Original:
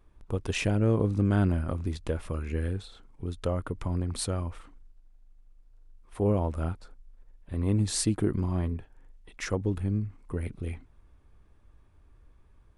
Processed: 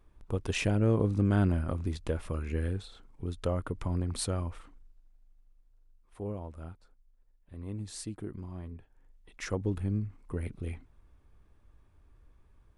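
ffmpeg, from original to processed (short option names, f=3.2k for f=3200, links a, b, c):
-af "volume=9dB,afade=t=out:st=4.42:d=1.96:silence=0.266073,afade=t=in:st=8.65:d=1.02:silence=0.298538"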